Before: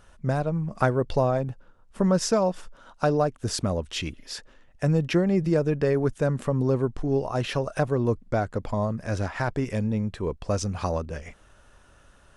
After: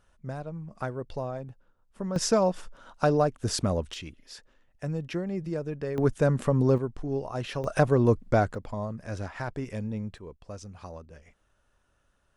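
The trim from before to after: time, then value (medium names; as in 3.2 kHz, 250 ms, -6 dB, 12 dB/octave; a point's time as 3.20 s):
-11 dB
from 2.16 s -0.5 dB
from 3.94 s -9.5 dB
from 5.98 s +1 dB
from 6.78 s -6 dB
from 7.64 s +2.5 dB
from 8.55 s -7 dB
from 10.18 s -15 dB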